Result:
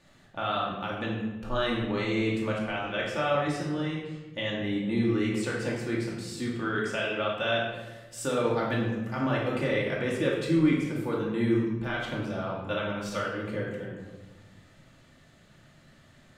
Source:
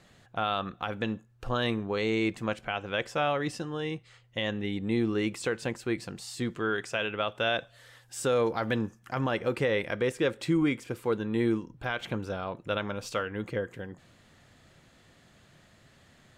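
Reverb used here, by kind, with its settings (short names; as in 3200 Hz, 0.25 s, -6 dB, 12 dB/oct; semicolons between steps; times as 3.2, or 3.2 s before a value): shoebox room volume 670 m³, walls mixed, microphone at 2.5 m; gain -5 dB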